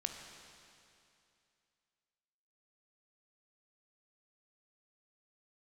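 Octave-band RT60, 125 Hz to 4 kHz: 2.6, 2.6, 2.6, 2.6, 2.6, 2.6 s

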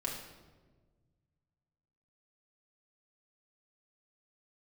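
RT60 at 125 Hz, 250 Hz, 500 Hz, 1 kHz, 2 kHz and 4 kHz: 2.7, 2.0, 1.6, 1.2, 0.95, 0.85 s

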